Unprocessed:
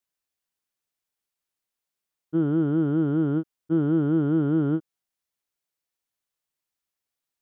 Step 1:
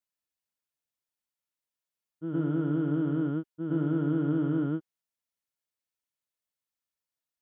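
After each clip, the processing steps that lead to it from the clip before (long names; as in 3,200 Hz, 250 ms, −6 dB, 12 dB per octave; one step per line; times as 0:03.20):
notch comb filter 390 Hz
backwards echo 114 ms −5 dB
dynamic equaliser 2,400 Hz, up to +5 dB, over −46 dBFS, Q 0.77
level −6 dB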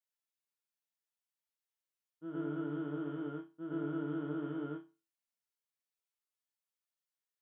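high-pass filter 440 Hz 6 dB per octave
resonators tuned to a chord D2 minor, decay 0.3 s
level +6.5 dB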